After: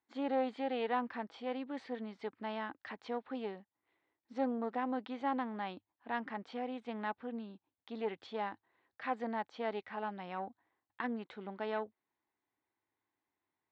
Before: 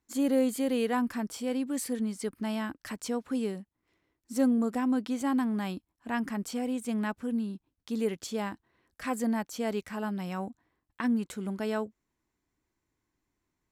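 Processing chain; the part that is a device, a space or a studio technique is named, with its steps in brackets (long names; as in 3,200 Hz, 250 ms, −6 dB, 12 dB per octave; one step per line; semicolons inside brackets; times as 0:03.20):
guitar amplifier (tube saturation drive 20 dB, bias 0.5; bass and treble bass −13 dB, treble −13 dB; loudspeaker in its box 93–4,500 Hz, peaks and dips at 100 Hz +8 dB, 820 Hz +7 dB, 1,900 Hz +3 dB, 3,700 Hz +6 dB)
level −3 dB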